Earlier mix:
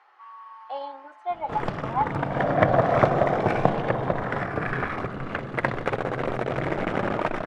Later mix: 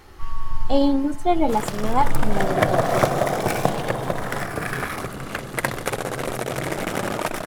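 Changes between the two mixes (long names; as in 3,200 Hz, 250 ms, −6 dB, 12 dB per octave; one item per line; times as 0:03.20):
speech: remove four-pole ladder high-pass 690 Hz, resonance 35%
master: remove low-pass filter 2,200 Hz 12 dB per octave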